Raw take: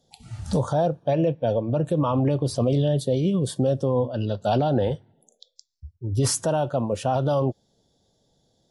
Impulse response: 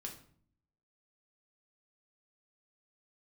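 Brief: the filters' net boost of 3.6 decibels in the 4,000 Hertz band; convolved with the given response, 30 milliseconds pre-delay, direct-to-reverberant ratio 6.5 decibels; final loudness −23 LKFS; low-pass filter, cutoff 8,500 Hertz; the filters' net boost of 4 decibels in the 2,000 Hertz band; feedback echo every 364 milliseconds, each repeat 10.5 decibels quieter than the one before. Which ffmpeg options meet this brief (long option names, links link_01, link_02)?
-filter_complex "[0:a]lowpass=8500,equalizer=frequency=2000:width_type=o:gain=5,equalizer=frequency=4000:width_type=o:gain=3.5,aecho=1:1:364|728|1092:0.299|0.0896|0.0269,asplit=2[link_01][link_02];[1:a]atrim=start_sample=2205,adelay=30[link_03];[link_02][link_03]afir=irnorm=-1:irlink=0,volume=-3.5dB[link_04];[link_01][link_04]amix=inputs=2:normalize=0,volume=-1dB"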